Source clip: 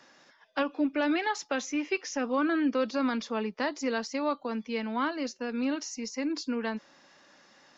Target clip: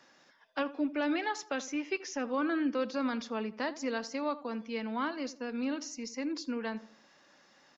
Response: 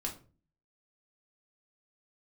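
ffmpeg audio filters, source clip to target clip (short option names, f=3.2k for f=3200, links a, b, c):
-filter_complex "[0:a]asplit=2[a][b];[b]adelay=82,lowpass=f=1.6k:p=1,volume=-15.5dB,asplit=2[c][d];[d]adelay=82,lowpass=f=1.6k:p=1,volume=0.41,asplit=2[e][f];[f]adelay=82,lowpass=f=1.6k:p=1,volume=0.41,asplit=2[g][h];[h]adelay=82,lowpass=f=1.6k:p=1,volume=0.41[i];[a][c][e][g][i]amix=inputs=5:normalize=0,volume=-4dB"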